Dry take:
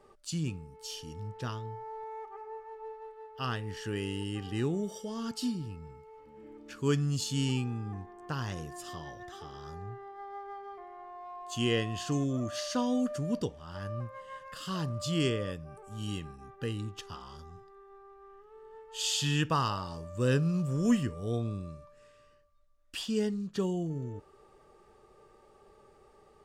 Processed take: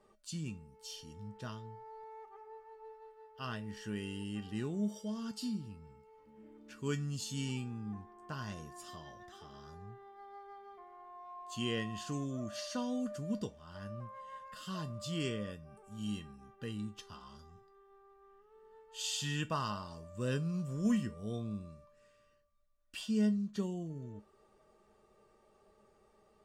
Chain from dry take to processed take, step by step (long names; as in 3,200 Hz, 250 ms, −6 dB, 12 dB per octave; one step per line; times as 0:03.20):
tuned comb filter 210 Hz, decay 0.18 s, harmonics odd, mix 80%
level +4 dB